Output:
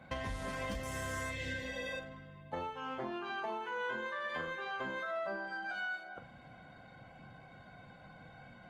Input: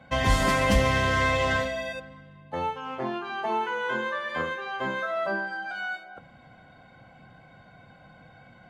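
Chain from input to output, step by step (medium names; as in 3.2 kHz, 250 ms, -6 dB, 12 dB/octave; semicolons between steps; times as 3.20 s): 0.83–1.30 s: resonant high shelf 5.9 kHz +13 dB, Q 1.5; 1.34–1.94 s: spectral replace 370–1500 Hz after; compression 16:1, threshold -33 dBFS, peak gain reduction 18 dB; flutter echo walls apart 7.3 m, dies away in 0.23 s; trim -3 dB; Opus 24 kbps 48 kHz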